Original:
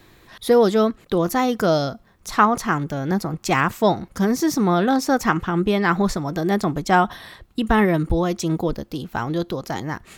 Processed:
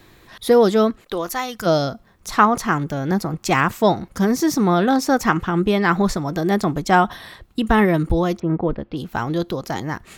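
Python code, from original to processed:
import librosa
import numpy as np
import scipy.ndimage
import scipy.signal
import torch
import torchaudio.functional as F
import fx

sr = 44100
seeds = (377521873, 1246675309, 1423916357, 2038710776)

y = fx.peak_eq(x, sr, hz=fx.line((1.0, 83.0), (1.65, 450.0)), db=-14.5, octaves=2.9, at=(1.0, 1.65), fade=0.02)
y = fx.lowpass(y, sr, hz=fx.line((8.38, 1600.0), (8.96, 3600.0)), slope=24, at=(8.38, 8.96), fade=0.02)
y = y * 10.0 ** (1.5 / 20.0)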